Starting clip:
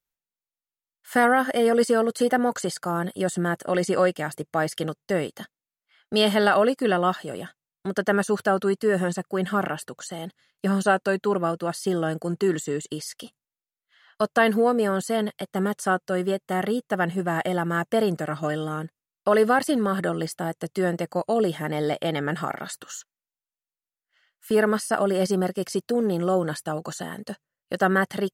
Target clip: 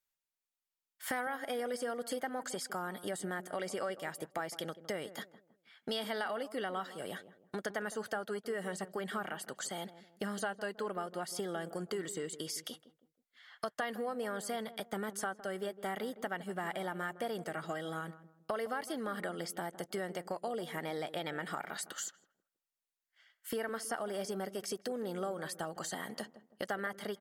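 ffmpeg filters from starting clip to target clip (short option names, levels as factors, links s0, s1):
-filter_complex "[0:a]lowshelf=f=400:g=-9,acompressor=threshold=0.0141:ratio=4,asplit=2[s0][s1];[s1]adelay=167,lowpass=f=810:p=1,volume=0.224,asplit=2[s2][s3];[s3]adelay=167,lowpass=f=810:p=1,volume=0.39,asplit=2[s4][s5];[s5]adelay=167,lowpass=f=810:p=1,volume=0.39,asplit=2[s6][s7];[s7]adelay=167,lowpass=f=810:p=1,volume=0.39[s8];[s0][s2][s4][s6][s8]amix=inputs=5:normalize=0,asetrate=45938,aresample=44100"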